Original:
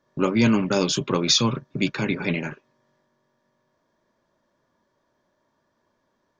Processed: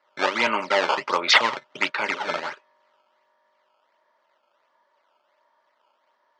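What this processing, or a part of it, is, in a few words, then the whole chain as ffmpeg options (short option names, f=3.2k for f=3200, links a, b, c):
circuit-bent sampling toy: -af "acrusher=samples=13:mix=1:aa=0.000001:lfo=1:lforange=20.8:lforate=1.4,highpass=560,equalizer=f=600:t=q:w=4:g=7,equalizer=f=910:t=q:w=4:g=10,equalizer=f=1.3k:t=q:w=4:g=8,equalizer=f=2k:t=q:w=4:g=9,equalizer=f=3k:t=q:w=4:g=6,equalizer=f=4.4k:t=q:w=4:g=3,lowpass=f=5.8k:w=0.5412,lowpass=f=5.8k:w=1.3066,volume=-1dB"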